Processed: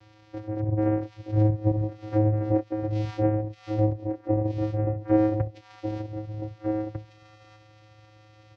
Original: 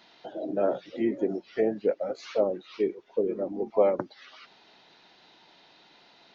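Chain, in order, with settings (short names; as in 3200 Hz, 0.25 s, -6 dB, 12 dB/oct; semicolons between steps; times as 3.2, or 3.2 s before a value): dynamic EQ 5000 Hz, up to +4 dB, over -56 dBFS, Q 0.98; in parallel at -1 dB: compressor, threshold -38 dBFS, peak gain reduction 19.5 dB; on the sum: vocoder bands 4, square 144 Hz; echo 1.147 s -7 dB; speed mistake 45 rpm record played at 33 rpm; gain +2 dB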